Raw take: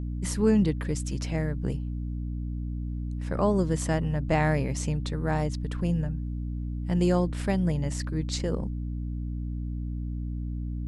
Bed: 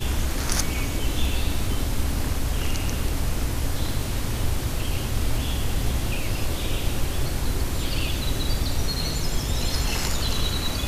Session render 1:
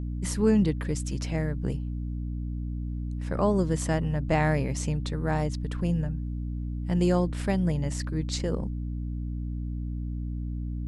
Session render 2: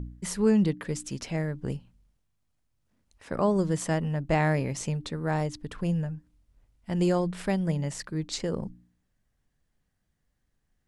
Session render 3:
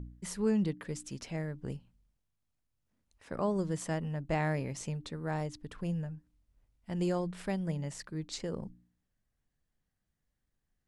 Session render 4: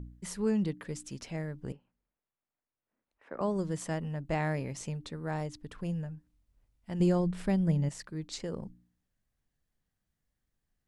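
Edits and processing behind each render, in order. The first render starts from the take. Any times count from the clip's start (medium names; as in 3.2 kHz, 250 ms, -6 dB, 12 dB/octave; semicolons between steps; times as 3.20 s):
no audible change
de-hum 60 Hz, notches 5
trim -7 dB
1.72–3.41 s: three-band isolator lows -18 dB, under 270 Hz, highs -22 dB, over 2.6 kHz; 7.00–7.89 s: bass shelf 300 Hz +10 dB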